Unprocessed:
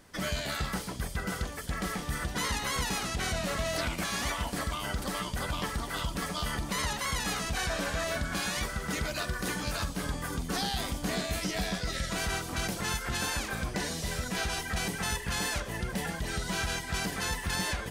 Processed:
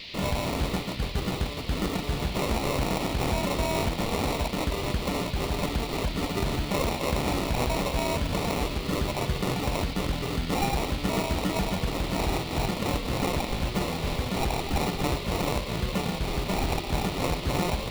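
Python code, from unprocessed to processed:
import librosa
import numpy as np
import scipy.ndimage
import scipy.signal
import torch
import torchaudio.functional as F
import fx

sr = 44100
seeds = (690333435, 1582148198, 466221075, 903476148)

y = fx.sample_hold(x, sr, seeds[0], rate_hz=1600.0, jitter_pct=0)
y = fx.dmg_noise_band(y, sr, seeds[1], low_hz=2000.0, high_hz=4600.0, level_db=-47.0)
y = F.gain(torch.from_numpy(y), 5.0).numpy()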